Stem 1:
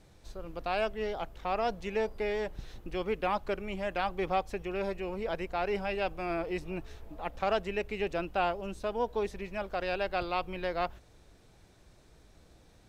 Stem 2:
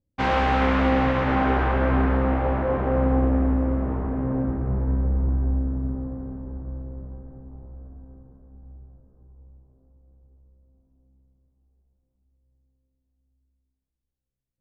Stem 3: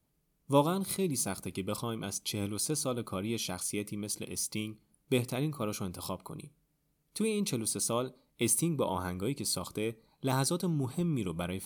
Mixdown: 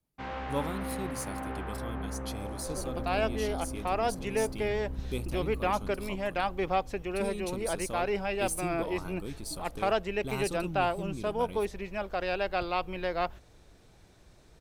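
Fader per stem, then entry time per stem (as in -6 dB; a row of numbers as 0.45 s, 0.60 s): +1.5 dB, -16.0 dB, -7.0 dB; 2.40 s, 0.00 s, 0.00 s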